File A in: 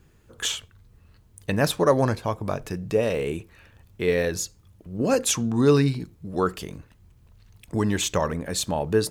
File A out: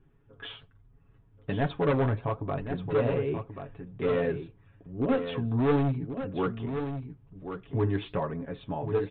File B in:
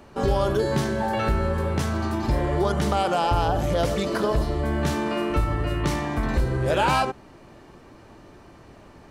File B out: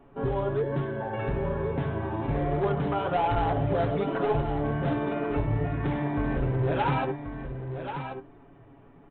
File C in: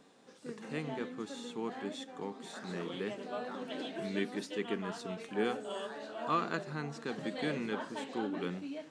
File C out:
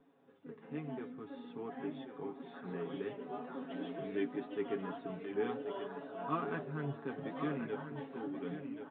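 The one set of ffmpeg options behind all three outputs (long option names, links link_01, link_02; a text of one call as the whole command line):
ffmpeg -i in.wav -filter_complex "[0:a]lowpass=frequency=1000:poles=1,bandreject=frequency=570:width=15,aecho=1:1:7.2:0.77,dynaudnorm=framelen=160:gausssize=17:maxgain=3.5dB,aresample=8000,asoftclip=type=hard:threshold=-15dB,aresample=44100,flanger=delay=2.7:depth=7.7:regen=66:speed=1.2:shape=sinusoidal,asplit=2[link_01][link_02];[link_02]aecho=0:1:1083:0.376[link_03];[link_01][link_03]amix=inputs=2:normalize=0,volume=-2dB" out.wav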